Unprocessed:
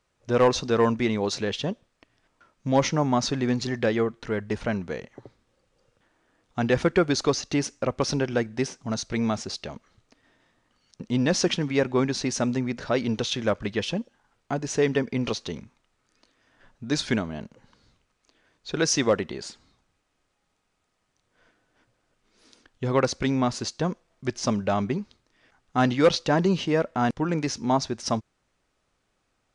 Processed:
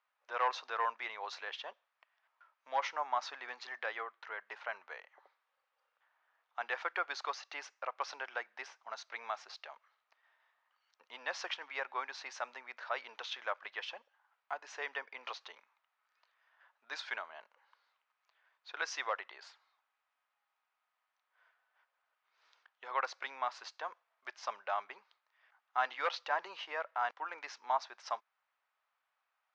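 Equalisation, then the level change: HPF 850 Hz 24 dB/oct; air absorption 150 m; high shelf 3400 Hz -12 dB; -2.5 dB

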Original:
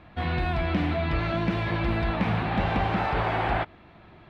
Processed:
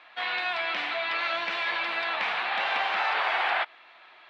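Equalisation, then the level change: BPF 700–4100 Hz; tilt +4 dB/oct; +2.0 dB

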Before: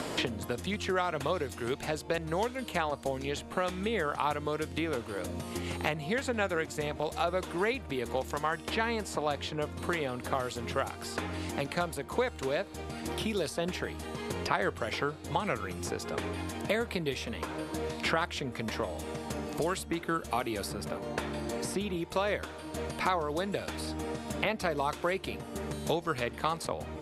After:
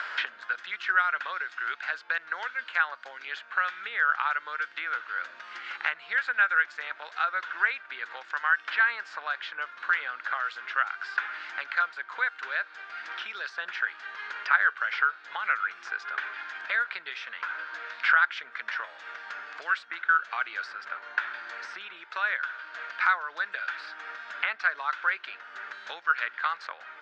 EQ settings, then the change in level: resonant high-pass 1500 Hz, resonance Q 7.1; Bessel low-pass 3300 Hz, order 8; 0.0 dB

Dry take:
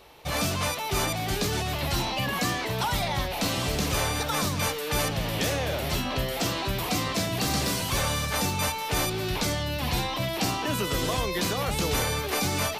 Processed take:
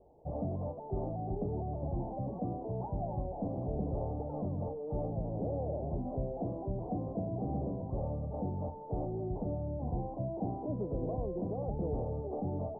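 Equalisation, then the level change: steep low-pass 780 Hz 48 dB/oct; -6.0 dB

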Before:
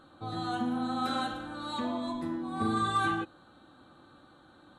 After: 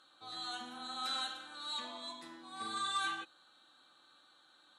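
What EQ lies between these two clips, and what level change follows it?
band-pass 5500 Hz, Q 0.83; +4.0 dB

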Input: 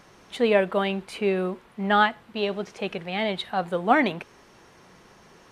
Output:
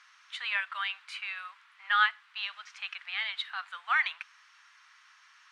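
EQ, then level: steep high-pass 1200 Hz 36 dB/oct; air absorption 84 m; 0.0 dB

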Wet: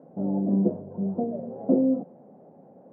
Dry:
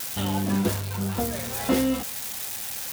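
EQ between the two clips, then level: elliptic band-pass 160–640 Hz, stop band 80 dB; air absorption 320 m; +3.0 dB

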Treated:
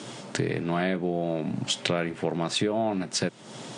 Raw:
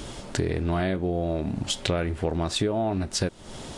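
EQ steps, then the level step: Chebyshev band-pass 120–9300 Hz, order 5; dynamic EQ 2300 Hz, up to +4 dB, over -48 dBFS, Q 1.3; 0.0 dB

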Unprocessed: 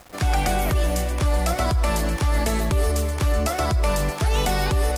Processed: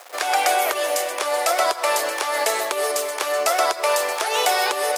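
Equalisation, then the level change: inverse Chebyshev high-pass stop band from 180 Hz, stop band 50 dB; +6.0 dB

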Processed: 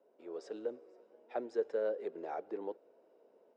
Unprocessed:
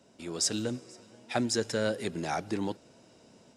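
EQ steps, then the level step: ladder band-pass 510 Hz, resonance 55%; tilt +2 dB/oct; +5.0 dB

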